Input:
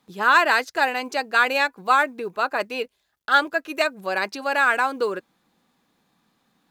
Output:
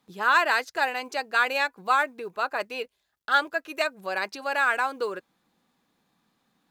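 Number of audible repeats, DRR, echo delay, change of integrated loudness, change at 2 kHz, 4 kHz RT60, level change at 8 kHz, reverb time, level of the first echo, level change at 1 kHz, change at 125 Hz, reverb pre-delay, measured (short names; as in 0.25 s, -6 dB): none, none, none, -4.5 dB, -4.0 dB, none, -4.0 dB, none, none, -4.5 dB, n/a, none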